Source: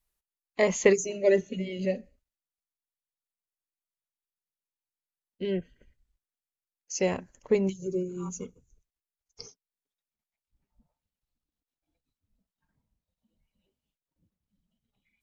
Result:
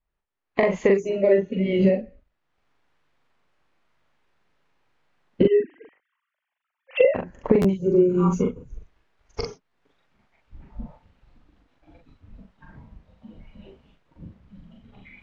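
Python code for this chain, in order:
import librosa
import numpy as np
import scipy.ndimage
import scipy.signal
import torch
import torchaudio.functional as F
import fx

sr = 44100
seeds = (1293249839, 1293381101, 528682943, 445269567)

y = fx.sine_speech(x, sr, at=(5.43, 7.15))
y = fx.recorder_agc(y, sr, target_db=-12.0, rise_db_per_s=32.0, max_gain_db=30)
y = scipy.signal.sosfilt(scipy.signal.butter(2, 2000.0, 'lowpass', fs=sr, output='sos'), y)
y = fx.doubler(y, sr, ms=41.0, db=-3)
y = fx.buffer_glitch(y, sr, at_s=(7.61, 9.68), block=512, repeats=2)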